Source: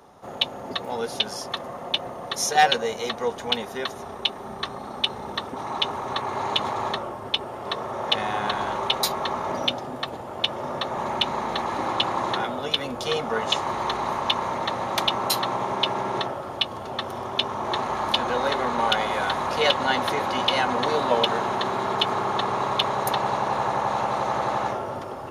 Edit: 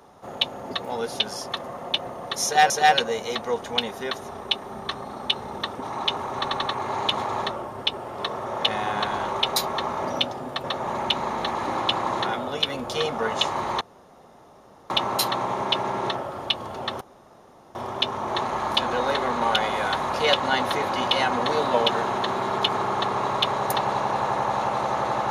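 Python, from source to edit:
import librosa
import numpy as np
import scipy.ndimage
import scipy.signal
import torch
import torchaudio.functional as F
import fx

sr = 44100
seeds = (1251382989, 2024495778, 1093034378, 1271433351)

y = fx.edit(x, sr, fx.repeat(start_s=2.44, length_s=0.26, count=2),
    fx.stutter(start_s=6.1, slice_s=0.09, count=4),
    fx.cut(start_s=10.11, length_s=0.64),
    fx.room_tone_fill(start_s=13.92, length_s=1.09),
    fx.insert_room_tone(at_s=17.12, length_s=0.74), tone=tone)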